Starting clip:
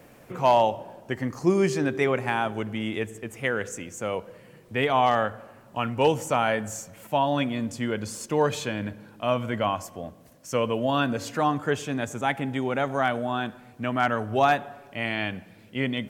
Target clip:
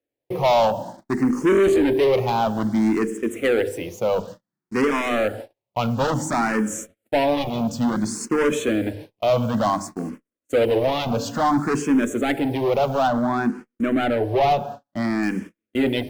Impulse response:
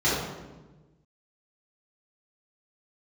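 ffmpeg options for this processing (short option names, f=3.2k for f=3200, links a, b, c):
-filter_complex "[0:a]equalizer=f=310:w=0.79:g=10.5,acrusher=bits=7:mix=0:aa=0.5,bandreject=f=50:t=h:w=6,bandreject=f=100:t=h:w=6,bandreject=f=150:t=h:w=6,bandreject=f=200:t=h:w=6,bandreject=f=250:t=h:w=6,bandreject=f=300:t=h:w=6,bandreject=f=350:t=h:w=6,bandreject=f=400:t=h:w=6,bandreject=f=450:t=h:w=6,asoftclip=type=hard:threshold=-20dB,agate=range=-45dB:threshold=-37dB:ratio=16:detection=peak,asettb=1/sr,asplit=3[a][b][c];[a]atrim=end=13.074[d];[b]atrim=start=13.07:end=15.23,asetpts=PTS-STARTPTS,afade=t=in:d=0.004:c=qsin,afade=t=out:st=2.156:d=0.004:c=qsin,highshelf=f=3.4k:g=-8[e];[c]atrim=start=15.226[f];[d][e]acrossfade=d=0.004:c1=hsin:c2=qsin[g];[g][f]acrossfade=d=0.004:c1=qsin:c2=hsin,asplit=2[h][i];[i]afreqshift=0.57[j];[h][j]amix=inputs=2:normalize=1,volume=6.5dB"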